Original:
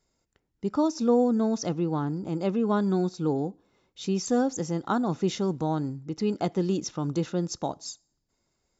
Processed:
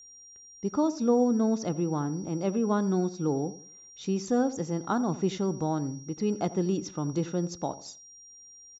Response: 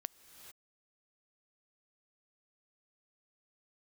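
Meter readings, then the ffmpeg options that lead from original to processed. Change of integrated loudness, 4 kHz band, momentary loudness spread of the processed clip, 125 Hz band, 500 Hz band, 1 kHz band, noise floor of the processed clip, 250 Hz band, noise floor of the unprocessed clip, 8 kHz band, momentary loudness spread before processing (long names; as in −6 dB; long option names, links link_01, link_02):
−1.5 dB, −3.5 dB, 22 LU, −1.5 dB, −1.5 dB, −1.5 dB, −52 dBFS, −1.0 dB, −77 dBFS, can't be measured, 10 LU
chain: -filter_complex "[0:a]highshelf=frequency=5600:gain=-10.5,aeval=exprs='val(0)+0.00447*sin(2*PI*5700*n/s)':channel_layout=same,asplit=2[link_01][link_02];[link_02]adelay=86,lowpass=frequency=970:poles=1,volume=-14dB,asplit=2[link_03][link_04];[link_04]adelay=86,lowpass=frequency=970:poles=1,volume=0.35,asplit=2[link_05][link_06];[link_06]adelay=86,lowpass=frequency=970:poles=1,volume=0.35[link_07];[link_03][link_05][link_07]amix=inputs=3:normalize=0[link_08];[link_01][link_08]amix=inputs=2:normalize=0,volume=-1.5dB"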